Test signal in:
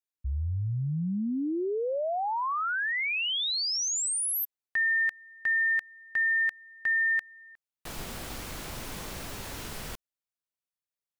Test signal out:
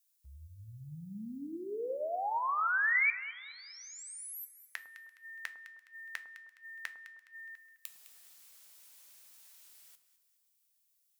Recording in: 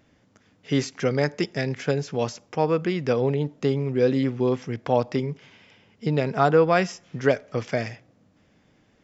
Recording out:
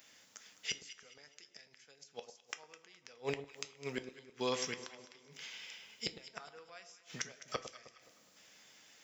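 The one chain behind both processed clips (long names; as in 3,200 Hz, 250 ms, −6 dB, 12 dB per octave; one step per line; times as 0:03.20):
first difference
gate with flip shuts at −36 dBFS, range −32 dB
in parallel at 0 dB: speech leveller within 4 dB 2 s
on the sum: delay that swaps between a low-pass and a high-pass 104 ms, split 1,100 Hz, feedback 61%, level −10 dB
coupled-rooms reverb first 0.26 s, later 2.4 s, from −21 dB, DRR 9.5 dB
level +7 dB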